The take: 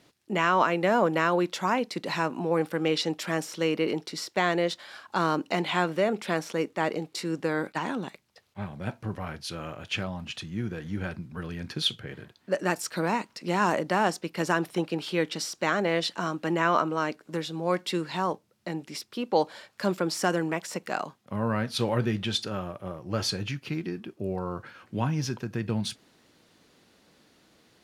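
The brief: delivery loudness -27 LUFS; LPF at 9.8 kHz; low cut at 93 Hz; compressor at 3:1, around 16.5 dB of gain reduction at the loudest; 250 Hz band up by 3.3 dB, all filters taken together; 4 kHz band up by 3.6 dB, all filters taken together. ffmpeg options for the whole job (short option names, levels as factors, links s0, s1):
-af "highpass=93,lowpass=9800,equalizer=f=250:t=o:g=5,equalizer=f=4000:t=o:g=4.5,acompressor=threshold=0.00891:ratio=3,volume=5.01"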